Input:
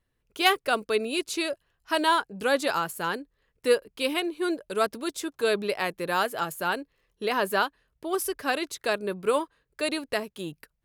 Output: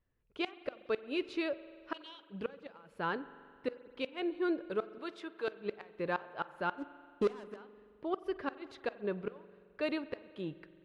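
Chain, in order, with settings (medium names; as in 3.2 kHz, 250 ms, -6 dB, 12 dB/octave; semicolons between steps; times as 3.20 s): distance through air 350 m; saturation -14 dBFS, distortion -23 dB; 1.94–2.35 s: resonant high shelf 2.2 kHz +11.5 dB, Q 3; 4.98–5.48 s: high-pass 740 Hz 6 dB/octave; 6.78–7.56 s: waveshaping leveller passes 3; inverted gate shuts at -19 dBFS, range -26 dB; spring tank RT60 2.2 s, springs 43 ms, chirp 20 ms, DRR 15 dB; trim -3.5 dB; AAC 96 kbps 24 kHz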